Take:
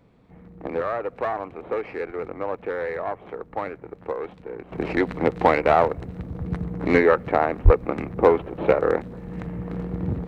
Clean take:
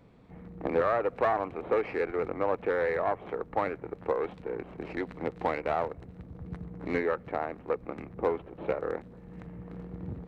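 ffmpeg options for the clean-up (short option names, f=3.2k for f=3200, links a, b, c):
-filter_complex "[0:a]asplit=3[a][b][c];[a]afade=t=out:st=7.64:d=0.02[d];[b]highpass=f=140:w=0.5412,highpass=f=140:w=1.3066,afade=t=in:st=7.64:d=0.02,afade=t=out:st=7.76:d=0.02[e];[c]afade=t=in:st=7.76:d=0.02[f];[d][e][f]amix=inputs=3:normalize=0,asetnsamples=n=441:p=0,asendcmd='4.72 volume volume -12dB',volume=0dB"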